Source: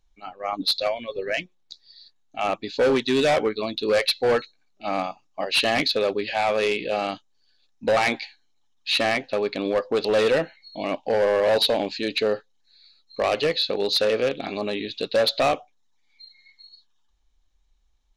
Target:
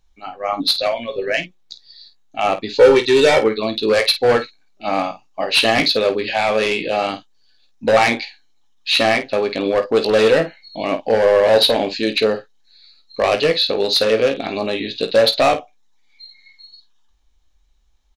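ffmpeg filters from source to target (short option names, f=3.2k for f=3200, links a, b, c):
-filter_complex "[0:a]asettb=1/sr,asplit=3[a][b][c];[a]atrim=end=2.744[d];[b]atrim=start=2.74:end=3.42,asetpts=PTS-STARTPTS,afade=t=in:d=0.004:c=qsin,afade=t=out:st=0.676:d=0.004:c=qsin,aecho=1:1:2.2:0.66,atrim=end_sample=29988[e];[c]atrim=start=3.416[f];[d][e]acrossfade=d=0.004:c1=hsin:c2=qsin[g];[g][f]acrossfade=d=0.004:c1=qsin:c2=hsin,aecho=1:1:18|51:0.376|0.266,volume=5.5dB"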